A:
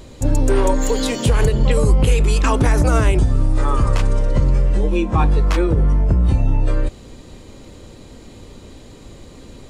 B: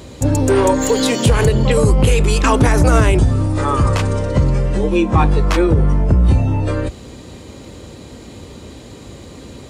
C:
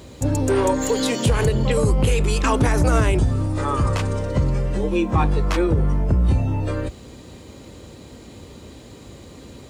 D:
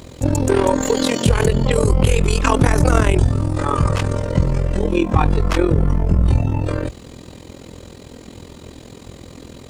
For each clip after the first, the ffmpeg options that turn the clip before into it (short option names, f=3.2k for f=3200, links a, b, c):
-af "highpass=f=55:w=0.5412,highpass=f=55:w=1.3066,acontrast=35"
-af "acrusher=bits=8:mix=0:aa=0.5,volume=-5.5dB"
-af "tremolo=f=42:d=0.824,volume=6.5dB"